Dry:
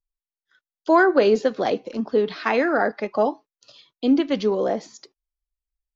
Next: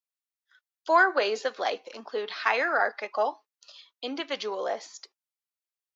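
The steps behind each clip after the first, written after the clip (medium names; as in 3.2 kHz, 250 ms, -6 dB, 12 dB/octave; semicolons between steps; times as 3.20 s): high-pass 820 Hz 12 dB/octave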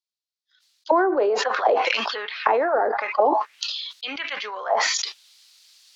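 dynamic bell 910 Hz, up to +7 dB, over -39 dBFS, Q 1.6; auto-wah 360–4400 Hz, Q 2.5, down, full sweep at -18.5 dBFS; decay stretcher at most 27 dB/s; trim +8.5 dB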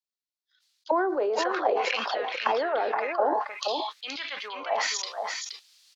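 delay 473 ms -5.5 dB; trim -6 dB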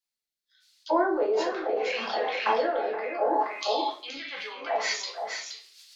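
rotary cabinet horn 0.75 Hz, later 6.7 Hz, at 4.05 s; simulated room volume 40 m³, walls mixed, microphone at 0.78 m; tape noise reduction on one side only encoder only; trim -3.5 dB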